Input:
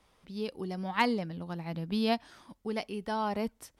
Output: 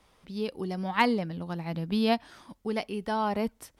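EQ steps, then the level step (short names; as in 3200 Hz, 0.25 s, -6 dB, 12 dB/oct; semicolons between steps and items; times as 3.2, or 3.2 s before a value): dynamic EQ 6300 Hz, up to -4 dB, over -53 dBFS, Q 1.2; +3.5 dB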